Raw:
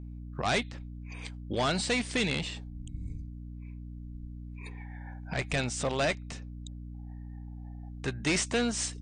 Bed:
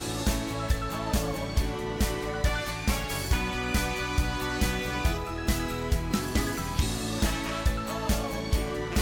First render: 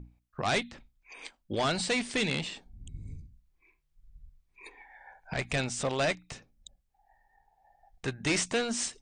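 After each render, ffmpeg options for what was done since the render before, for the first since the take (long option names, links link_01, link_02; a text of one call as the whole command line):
ffmpeg -i in.wav -af "bandreject=frequency=60:width_type=h:width=6,bandreject=frequency=120:width_type=h:width=6,bandreject=frequency=180:width_type=h:width=6,bandreject=frequency=240:width_type=h:width=6,bandreject=frequency=300:width_type=h:width=6" out.wav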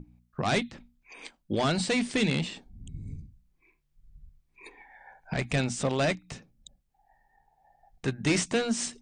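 ffmpeg -i in.wav -af "equalizer=frequency=190:width=0.71:gain=7.5,bandreject=frequency=60:width_type=h:width=6,bandreject=frequency=120:width_type=h:width=6,bandreject=frequency=180:width_type=h:width=6,bandreject=frequency=240:width_type=h:width=6" out.wav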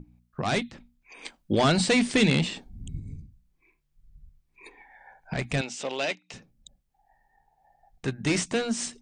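ffmpeg -i in.wav -filter_complex "[0:a]asettb=1/sr,asplit=3[link_01][link_02][link_03];[link_01]atrim=end=1.254[link_04];[link_02]atrim=start=1.25:end=3,asetpts=PTS-STARTPTS,afade=type=in:duration=0.004:curve=qsin,afade=type=out:start_time=1.746:duration=0.004:curve=qsin,acontrast=25[link_05];[link_03]atrim=start=2.996[link_06];[link_04][link_05]acrossfade=duration=0.004:curve1=hsin:curve2=qsin[link_07];[link_07][link_06]acrossfade=duration=0.004:curve1=qsin:curve2=hsin,asettb=1/sr,asplit=3[link_08][link_09][link_10];[link_08]atrim=end=5.614[link_11];[link_09]atrim=start=5.61:end=6.34,asetpts=PTS-STARTPTS,afade=type=in:duration=0.004:curve=qsin,afade=type=out:start_time=0.726:duration=0.004:curve=qsin,highpass=420,equalizer=frequency=640:width_type=q:width=4:gain=-3,equalizer=frequency=1200:width_type=q:width=4:gain=-6,equalizer=frequency=1700:width_type=q:width=4:gain=-3,equalizer=frequency=2800:width_type=q:width=4:gain=6,lowpass=frequency=7400:width=0.5412,lowpass=frequency=7400:width=1.3066[link_12];[link_10]atrim=start=6.336[link_13];[link_11][link_12]acrossfade=duration=0.004:curve1=hsin:curve2=qsin[link_14];[link_14][link_13]acrossfade=duration=0.004:curve1=qsin:curve2=hsin" out.wav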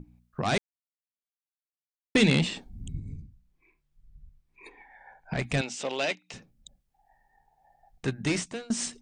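ffmpeg -i in.wav -filter_complex "[0:a]asettb=1/sr,asplit=3[link_01][link_02][link_03];[link_01]atrim=end=2.924[link_04];[link_02]atrim=start=2.92:end=5.4,asetpts=PTS-STARTPTS,afade=type=in:duration=0.004:curve=qsin,afade=type=out:start_time=2.476:duration=0.004:curve=qsin,highshelf=frequency=5300:gain=-6[link_05];[link_03]atrim=start=5.396[link_06];[link_04][link_05]acrossfade=duration=0.004:curve1=hsin:curve2=qsin[link_07];[link_07][link_06]acrossfade=duration=0.004:curve1=qsin:curve2=hsin,asplit=4[link_08][link_09][link_10][link_11];[link_08]atrim=end=0.58,asetpts=PTS-STARTPTS,afade=type=out:start_time=0.576:duration=0.004:curve=hsin[link_12];[link_09]atrim=start=0.58:end=2.15,asetpts=PTS-STARTPTS,volume=0[link_13];[link_10]atrim=start=2.15:end=8.7,asetpts=PTS-STARTPTS,afade=type=in:duration=0.004:curve=hsin,afade=type=out:start_time=6.03:duration=0.52:silence=0.0707946[link_14];[link_11]atrim=start=8.7,asetpts=PTS-STARTPTS,afade=type=in:duration=0.004:curve=hsin:silence=0.0707946[link_15];[link_12][link_13][link_14][link_15]concat=n=4:v=0:a=1" out.wav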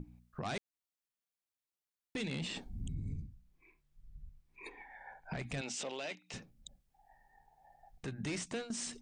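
ffmpeg -i in.wav -af "acompressor=threshold=-30dB:ratio=4,alimiter=level_in=7.5dB:limit=-24dB:level=0:latency=1:release=41,volume=-7.5dB" out.wav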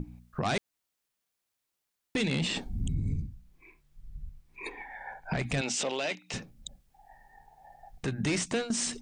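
ffmpeg -i in.wav -af "volume=9.5dB" out.wav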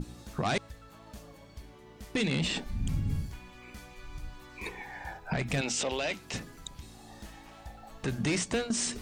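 ffmpeg -i in.wav -i bed.wav -filter_complex "[1:a]volume=-20.5dB[link_01];[0:a][link_01]amix=inputs=2:normalize=0" out.wav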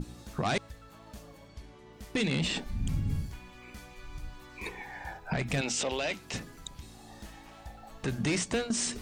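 ffmpeg -i in.wav -filter_complex "[0:a]asettb=1/sr,asplit=3[link_01][link_02][link_03];[link_01]atrim=end=1.484[link_04];[link_02]atrim=start=1.48:end=1.93,asetpts=PTS-STARTPTS,afade=type=in:duration=0.004:curve=qsin,afade=type=out:start_time=0.446:duration=0.004:curve=qsin,lowpass=9200[link_05];[link_03]atrim=start=1.926[link_06];[link_04][link_05]acrossfade=duration=0.004:curve1=hsin:curve2=qsin[link_07];[link_07][link_06]acrossfade=duration=0.004:curve1=qsin:curve2=hsin" out.wav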